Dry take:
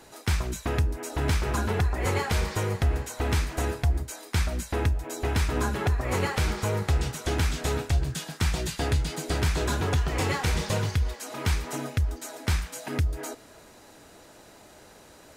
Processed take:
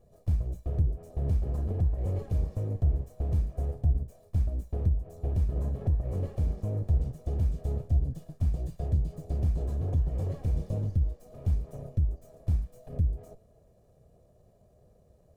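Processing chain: comb filter that takes the minimum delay 1.7 ms; FFT filter 130 Hz 0 dB, 710 Hz -11 dB, 1.1 kHz -25 dB, 1.8 kHz -30 dB, 3.8 kHz -29 dB, 13 kHz -22 dB

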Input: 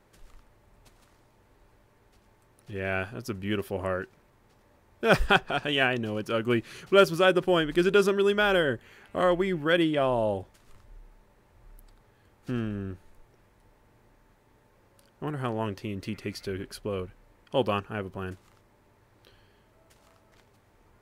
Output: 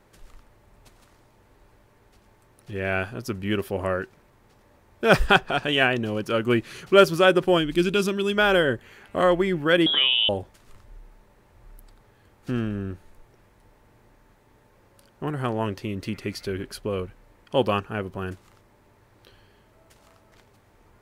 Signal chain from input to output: 7.57–8.36 s: time-frequency box 360–2100 Hz -7 dB; 9.86–10.29 s: frequency inversion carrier 3.6 kHz; trim +4 dB

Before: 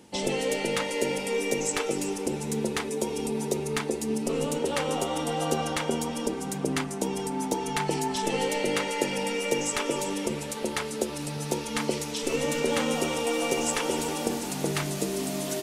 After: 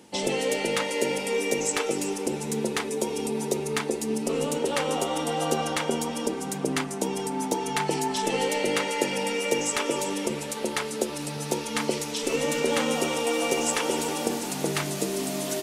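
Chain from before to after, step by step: bass shelf 95 Hz -11.5 dB; trim +2 dB

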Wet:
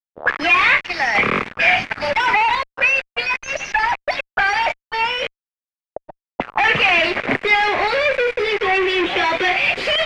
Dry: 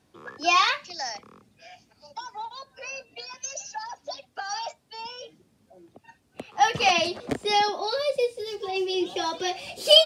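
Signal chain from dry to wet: tilt EQ +1.5 dB/octave; in parallel at +2.5 dB: compression 12:1, threshold -31 dBFS, peak gain reduction 23 dB; 1.15–2.55 s: on the sum: waveshaping leveller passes 5; flange 0.3 Hz, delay 4.3 ms, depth 8.3 ms, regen +84%; fuzz box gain 44 dB, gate -39 dBFS; touch-sensitive low-pass 490–2200 Hz up, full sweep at -17.5 dBFS; trim -3.5 dB

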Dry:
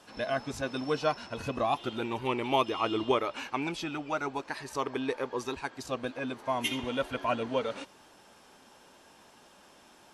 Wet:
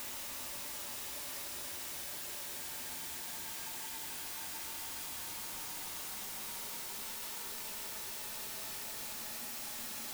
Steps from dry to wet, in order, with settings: loudest bins only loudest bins 1; added noise white -59 dBFS; Paulstretch 22×, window 0.25 s, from 8.91 s; trim +16 dB

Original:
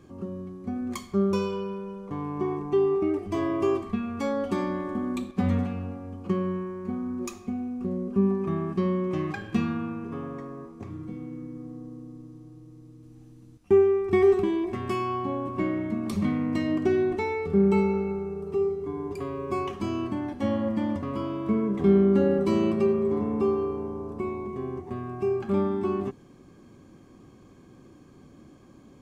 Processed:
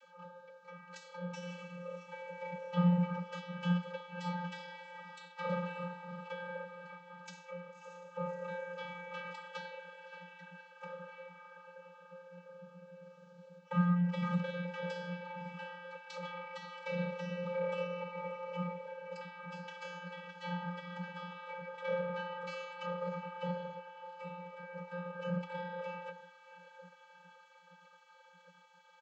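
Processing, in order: in parallel at -1 dB: compression 6:1, threshold -32 dBFS, peak gain reduction 16 dB; on the sum: low-pass 5.2 kHz 12 dB/octave; bass shelf 290 Hz +11 dB; band-stop 2 kHz, Q 21; comb 1.9 ms, depth 83%; on a send: echo that smears into a reverb 604 ms, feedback 62%, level -14 dB; on the sum: spectral gate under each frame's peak -25 dB weak; valve stage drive 28 dB, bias 0.6; vocoder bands 32, square 176 Hz; trim +6 dB

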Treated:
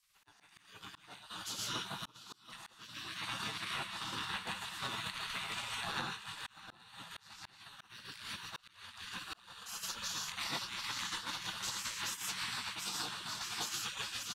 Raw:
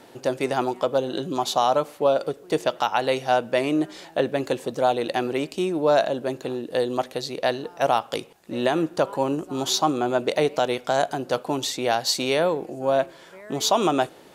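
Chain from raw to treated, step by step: backward echo that repeats 367 ms, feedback 61%, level -5 dB; doubling 20 ms -11.5 dB; shuffle delay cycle 1223 ms, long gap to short 1.5:1, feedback 53%, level -9.5 dB; gated-style reverb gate 180 ms rising, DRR -2.5 dB; expander -6 dBFS; hum notches 60/120/180/240 Hz; spectral gate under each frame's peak -20 dB weak; compression 10:1, threshold -55 dBFS, peak gain reduction 28 dB; frequency shift -15 Hz; slow attack 685 ms; trim +17.5 dB

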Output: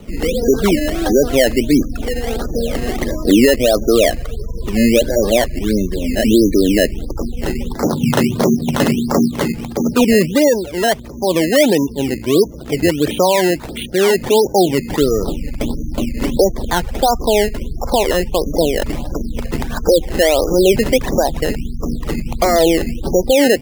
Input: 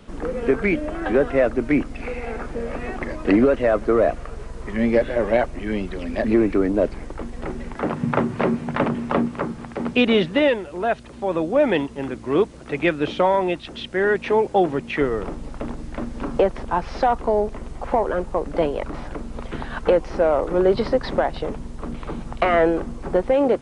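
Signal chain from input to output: spectral gate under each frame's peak -20 dB strong; peaking EQ 1.5 kHz -6.5 dB 2 oct; in parallel at +2.5 dB: peak limiter -18 dBFS, peak gain reduction 10 dB; on the sum: decimation with a swept rate 13×, swing 100% 1.5 Hz; trim +3 dB

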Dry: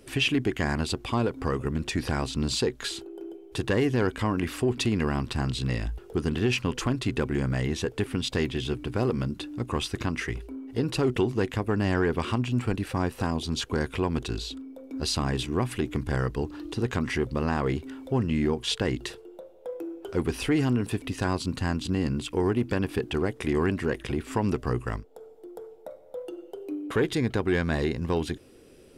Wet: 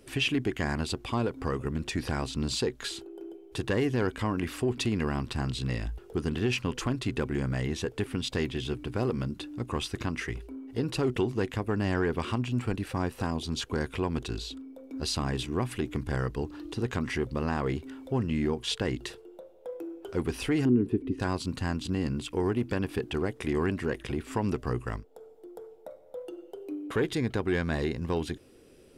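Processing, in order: 20.65–21.20 s: FFT filter 130 Hz 0 dB, 380 Hz +10 dB, 590 Hz -11 dB, 2.1 kHz -12 dB, 6.9 kHz -22 dB; trim -3 dB

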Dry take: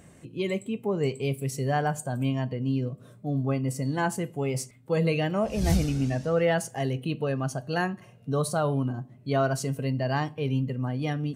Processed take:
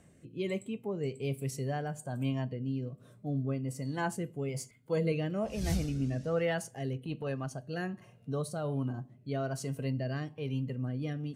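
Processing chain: 4.48–5.12 s: rippled EQ curve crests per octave 1.8, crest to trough 7 dB; rotary cabinet horn 1.2 Hz; 6.93–7.51 s: transient shaper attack -7 dB, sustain -3 dB; trim -5 dB

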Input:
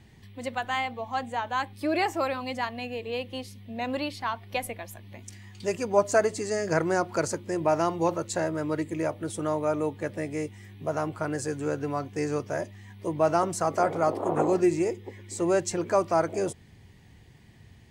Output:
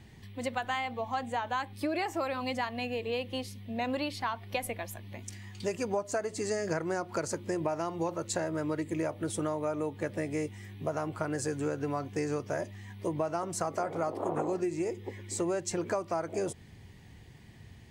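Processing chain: compression 10:1, threshold -29 dBFS, peak gain reduction 14 dB; trim +1 dB

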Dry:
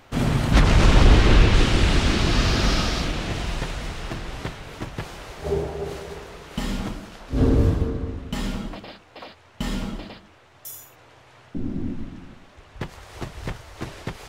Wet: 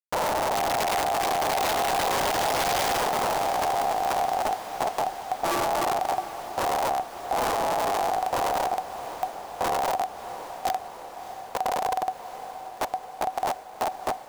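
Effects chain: Schmitt trigger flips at -28 dBFS; ring modulator 750 Hz; tone controls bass -4 dB, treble +4 dB; on a send: echo that smears into a reverb 639 ms, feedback 72%, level -12.5 dB

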